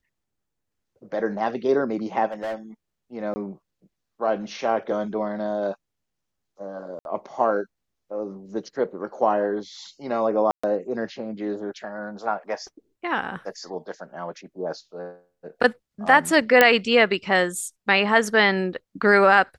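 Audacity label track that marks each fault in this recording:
2.320000	2.550000	clipped -26 dBFS
3.340000	3.360000	dropout 20 ms
6.990000	7.050000	dropout 61 ms
10.510000	10.630000	dropout 125 ms
16.610000	16.610000	pop -1 dBFS

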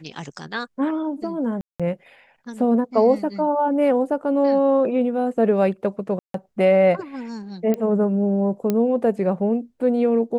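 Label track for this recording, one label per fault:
1.610000	1.800000	dropout 186 ms
6.190000	6.340000	dropout 153 ms
7.740000	7.740000	pop -13 dBFS
8.700000	8.700000	pop -9 dBFS

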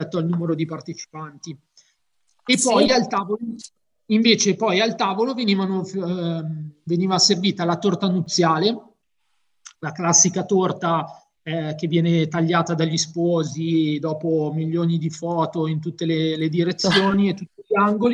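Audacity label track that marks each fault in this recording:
8.260000	8.260000	dropout 4.5 ms

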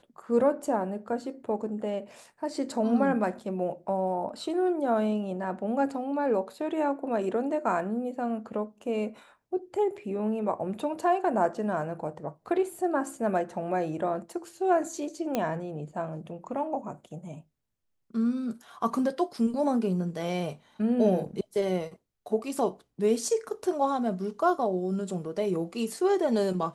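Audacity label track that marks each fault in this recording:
15.350000	15.350000	pop -14 dBFS

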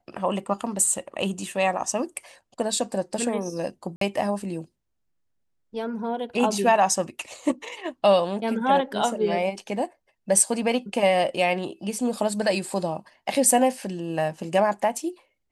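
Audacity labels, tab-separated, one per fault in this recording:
3.960000	4.010000	dropout 53 ms

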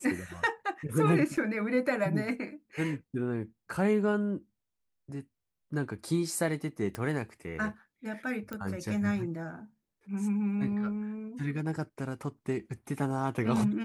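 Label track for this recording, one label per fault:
1.370000	1.370000	dropout 4.9 ms
6.950000	6.950000	pop -21 dBFS
8.530000	8.530000	pop -23 dBFS

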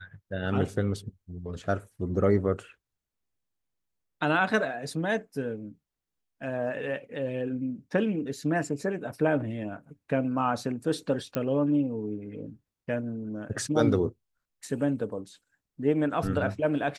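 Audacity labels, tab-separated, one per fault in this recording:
11.350000	11.350000	pop -15 dBFS

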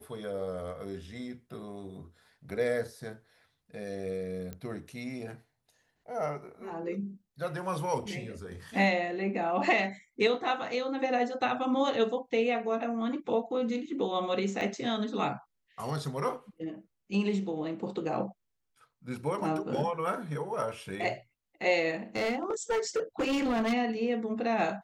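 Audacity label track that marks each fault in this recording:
4.530000	4.530000	pop -25 dBFS
14.610000	14.610000	dropout 3.4 ms
22.160000	23.740000	clipped -25.5 dBFS

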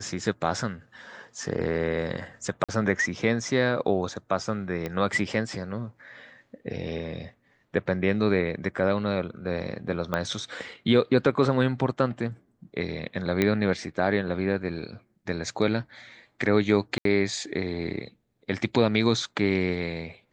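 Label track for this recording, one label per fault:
2.640000	2.690000	dropout 46 ms
4.860000	4.860000	pop -18 dBFS
10.140000	10.140000	pop -14 dBFS
13.420000	13.420000	pop -10 dBFS
16.980000	17.050000	dropout 73 ms

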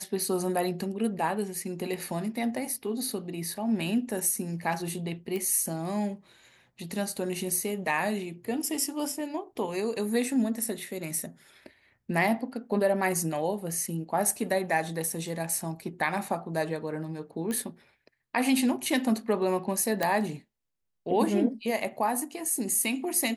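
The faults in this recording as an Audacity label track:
5.360000	5.360000	pop -21 dBFS
17.510000	17.510000	pop -20 dBFS
20.030000	20.030000	pop -12 dBFS

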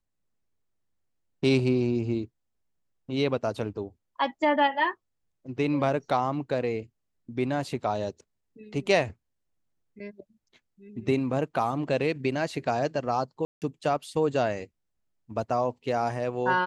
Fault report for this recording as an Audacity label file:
13.450000	13.620000	dropout 168 ms

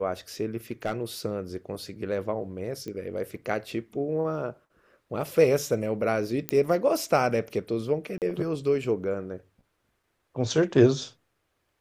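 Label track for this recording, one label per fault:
0.710000	1.030000	clipped -21.5 dBFS
2.880000	2.880000	pop -24 dBFS
6.490000	6.490000	pop -10 dBFS
8.180000	8.220000	dropout 38 ms

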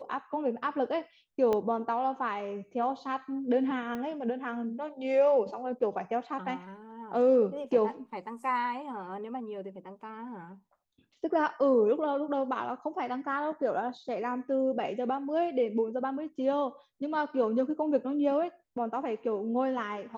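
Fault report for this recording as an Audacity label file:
1.530000	1.530000	pop -18 dBFS
3.950000	3.950000	pop -24 dBFS

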